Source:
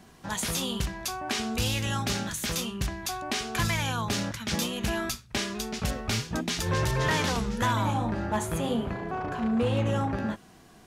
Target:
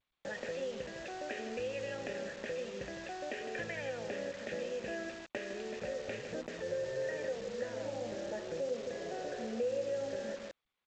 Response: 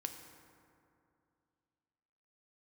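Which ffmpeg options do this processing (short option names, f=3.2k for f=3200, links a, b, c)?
-filter_complex "[0:a]asplit=3[a][b][c];[a]bandpass=f=530:t=q:w=8,volume=0dB[d];[b]bandpass=f=1.84k:t=q:w=8,volume=-6dB[e];[c]bandpass=f=2.48k:t=q:w=8,volume=-9dB[f];[d][e][f]amix=inputs=3:normalize=0,equalizer=f=5.7k:t=o:w=2.6:g=-5,adynamicsmooth=sensitivity=4:basefreq=2.2k,agate=range=-16dB:threshold=-59dB:ratio=16:detection=peak,asplit=2[g][h];[h]adelay=157,lowpass=f=3.5k:p=1,volume=-10.5dB,asplit=2[i][j];[j]adelay=157,lowpass=f=3.5k:p=1,volume=0.17[k];[g][i][k]amix=inputs=3:normalize=0,acompressor=threshold=-51dB:ratio=2.5,asettb=1/sr,asplit=3[l][m][n];[l]atrim=end=6.334[o];[m]atrim=start=6.33:end=8.8,asetpts=PTS-STARTPTS,afade=t=in:d=0.004:c=qsin,afade=t=out:st=2.466:d=0.004:c=qsin,highshelf=f=2.1k:g=-9.5[p];[n]atrim=start=8.796[q];[o][p]acrossfade=d=0.004:c1=hsin:c2=qsin[r];[r][q]acrossfade=d=0.004:c1=qsin:c2=hsin,acrusher=bits=9:mix=0:aa=0.000001,volume=12dB" -ar 16000 -c:a g722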